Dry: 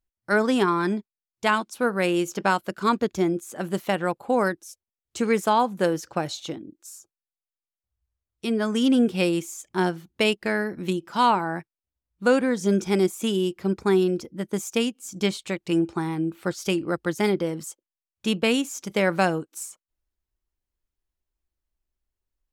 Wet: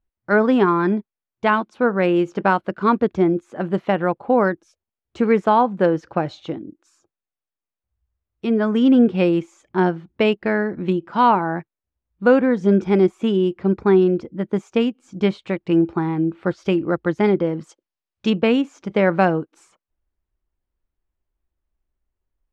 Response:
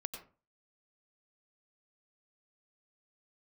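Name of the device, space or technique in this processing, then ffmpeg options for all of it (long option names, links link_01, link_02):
phone in a pocket: -filter_complex "[0:a]lowpass=3100,highshelf=frequency=2300:gain=-9.5,asettb=1/sr,asplit=3[link_01][link_02][link_03];[link_01]atrim=end=17.694[link_04];[link_02]atrim=start=17.69:end=18.3,asetpts=PTS-STARTPTS,afade=type=in:duration=0.004:curve=qsin,afade=type=out:start_time=0.606:duration=0.004:curve=qsin,equalizer=frequency=5500:width=0.83:gain=12[link_05];[link_03]atrim=start=18.296[link_06];[link_04][link_05]acrossfade=duration=0.004:curve1=hsin:curve2=qsin[link_07];[link_07][link_06]acrossfade=duration=0.004:curve1=qsin:curve2=hsin,volume=6dB"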